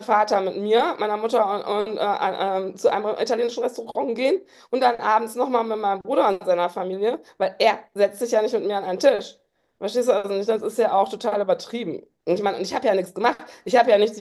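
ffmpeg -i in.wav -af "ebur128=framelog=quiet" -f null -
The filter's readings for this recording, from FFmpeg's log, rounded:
Integrated loudness:
  I:         -22.4 LUFS
  Threshold: -32.5 LUFS
Loudness range:
  LRA:         1.4 LU
  Threshold: -42.8 LUFS
  LRA low:   -23.6 LUFS
  LRA high:  -22.2 LUFS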